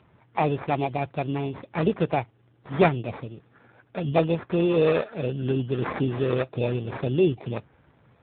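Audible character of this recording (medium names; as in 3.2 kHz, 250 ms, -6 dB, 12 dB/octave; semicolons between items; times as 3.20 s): aliases and images of a low sample rate 3.1 kHz, jitter 0%; AMR-NB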